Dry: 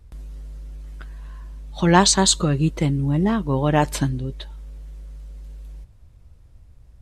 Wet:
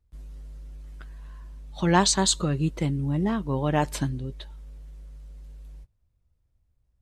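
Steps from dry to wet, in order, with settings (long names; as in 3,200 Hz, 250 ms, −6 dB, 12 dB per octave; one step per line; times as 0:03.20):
noise gate −38 dBFS, range −16 dB
level −5.5 dB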